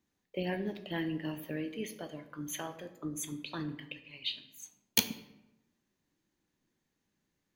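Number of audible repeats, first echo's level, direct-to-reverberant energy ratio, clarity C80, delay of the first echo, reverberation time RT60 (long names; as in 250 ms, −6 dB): no echo audible, no echo audible, 8.5 dB, 14.0 dB, no echo audible, 0.95 s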